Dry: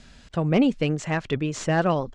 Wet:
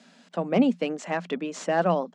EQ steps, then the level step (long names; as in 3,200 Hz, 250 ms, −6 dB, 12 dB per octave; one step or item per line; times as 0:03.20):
Chebyshev high-pass with heavy ripple 170 Hz, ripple 6 dB
+1.5 dB